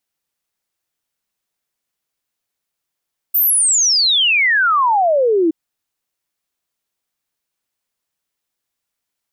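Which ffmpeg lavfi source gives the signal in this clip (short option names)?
-f lavfi -i "aevalsrc='0.282*clip(min(t,2.17-t)/0.01,0,1)*sin(2*PI*15000*2.17/log(310/15000)*(exp(log(310/15000)*t/2.17)-1))':d=2.17:s=44100"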